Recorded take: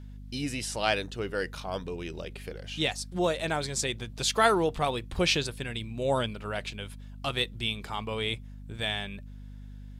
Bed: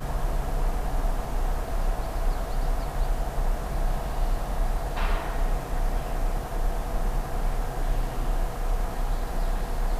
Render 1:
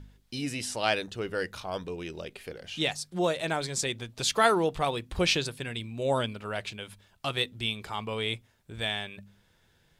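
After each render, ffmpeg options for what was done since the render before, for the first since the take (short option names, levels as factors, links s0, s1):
-af "bandreject=f=50:t=h:w=4,bandreject=f=100:t=h:w=4,bandreject=f=150:t=h:w=4,bandreject=f=200:t=h:w=4,bandreject=f=250:t=h:w=4"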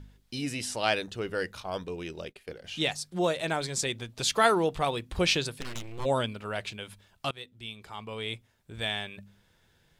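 -filter_complex "[0:a]asplit=3[s0][s1][s2];[s0]afade=t=out:st=1.52:d=0.02[s3];[s1]agate=range=0.0224:threshold=0.00891:ratio=3:release=100:detection=peak,afade=t=in:st=1.52:d=0.02,afade=t=out:st=2.63:d=0.02[s4];[s2]afade=t=in:st=2.63:d=0.02[s5];[s3][s4][s5]amix=inputs=3:normalize=0,asplit=3[s6][s7][s8];[s6]afade=t=out:st=5.6:d=0.02[s9];[s7]aeval=exprs='abs(val(0))':c=same,afade=t=in:st=5.6:d=0.02,afade=t=out:st=6.04:d=0.02[s10];[s8]afade=t=in:st=6.04:d=0.02[s11];[s9][s10][s11]amix=inputs=3:normalize=0,asplit=2[s12][s13];[s12]atrim=end=7.31,asetpts=PTS-STARTPTS,afade=t=out:st=7.306:d=0.004:c=hsin:silence=0.133352[s14];[s13]atrim=start=7.31,asetpts=PTS-STARTPTS,afade=t=in:d=1.67:silence=0.133352[s15];[s14][s15]concat=n=2:v=0:a=1"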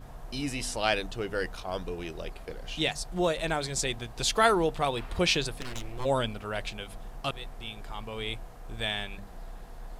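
-filter_complex "[1:a]volume=0.158[s0];[0:a][s0]amix=inputs=2:normalize=0"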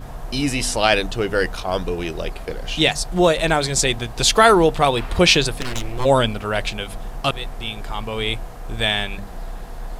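-af "volume=3.76,alimiter=limit=0.891:level=0:latency=1"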